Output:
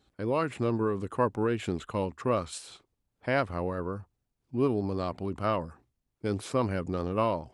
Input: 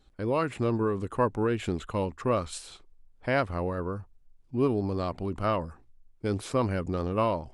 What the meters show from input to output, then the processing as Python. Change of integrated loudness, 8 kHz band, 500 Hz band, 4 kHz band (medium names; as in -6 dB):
-1.0 dB, -1.0 dB, -1.0 dB, -1.0 dB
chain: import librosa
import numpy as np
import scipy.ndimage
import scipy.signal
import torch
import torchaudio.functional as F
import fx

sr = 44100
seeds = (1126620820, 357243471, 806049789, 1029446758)

y = scipy.signal.sosfilt(scipy.signal.butter(2, 83.0, 'highpass', fs=sr, output='sos'), x)
y = y * 10.0 ** (-1.0 / 20.0)